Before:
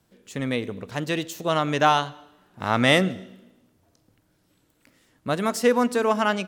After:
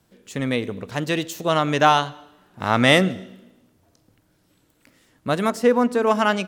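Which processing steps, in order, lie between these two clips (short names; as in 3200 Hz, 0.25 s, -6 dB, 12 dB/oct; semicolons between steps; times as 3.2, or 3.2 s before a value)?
5.5–6.07 high shelf 2100 Hz -9 dB; gain +3 dB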